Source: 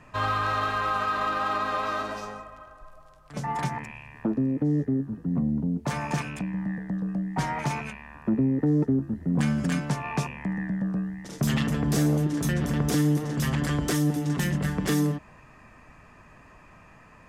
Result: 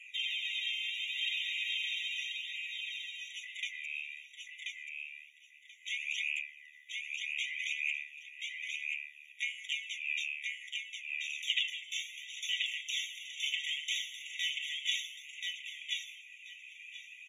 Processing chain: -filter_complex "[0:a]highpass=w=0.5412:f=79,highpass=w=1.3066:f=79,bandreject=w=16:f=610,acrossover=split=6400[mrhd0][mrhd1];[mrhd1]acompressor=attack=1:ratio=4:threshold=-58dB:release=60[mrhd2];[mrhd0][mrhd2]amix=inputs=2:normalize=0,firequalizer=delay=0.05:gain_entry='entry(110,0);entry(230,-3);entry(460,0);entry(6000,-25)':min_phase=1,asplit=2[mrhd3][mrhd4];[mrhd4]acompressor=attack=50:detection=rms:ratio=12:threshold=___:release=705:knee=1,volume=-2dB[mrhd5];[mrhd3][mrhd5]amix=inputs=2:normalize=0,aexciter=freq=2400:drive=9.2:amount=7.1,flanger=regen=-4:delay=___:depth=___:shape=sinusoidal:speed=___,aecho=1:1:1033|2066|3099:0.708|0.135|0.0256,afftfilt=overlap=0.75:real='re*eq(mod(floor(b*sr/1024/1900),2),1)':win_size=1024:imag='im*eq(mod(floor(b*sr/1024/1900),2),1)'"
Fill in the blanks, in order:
-39dB, 0.4, 1.9, 0.63